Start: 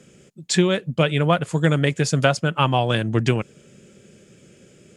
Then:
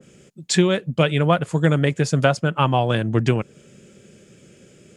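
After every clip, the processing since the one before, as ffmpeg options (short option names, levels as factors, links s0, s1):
-af "adynamicequalizer=threshold=0.0158:dfrequency=1800:dqfactor=0.7:tfrequency=1800:tqfactor=0.7:attack=5:release=100:ratio=0.375:range=2.5:mode=cutabove:tftype=highshelf,volume=1.12"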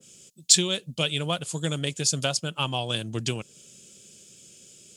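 -af "aexciter=amount=8.1:drive=4.2:freq=2800,volume=0.266"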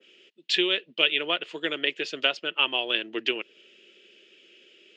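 -af "highpass=f=340:w=0.5412,highpass=f=340:w=1.3066,equalizer=f=350:t=q:w=4:g=4,equalizer=f=540:t=q:w=4:g=-4,equalizer=f=780:t=q:w=4:g=-7,equalizer=f=1100:t=q:w=4:g=-4,equalizer=f=1900:t=q:w=4:g=8,equalizer=f=2800:t=q:w=4:g=7,lowpass=f=3200:w=0.5412,lowpass=f=3200:w=1.3066,volume=1.41"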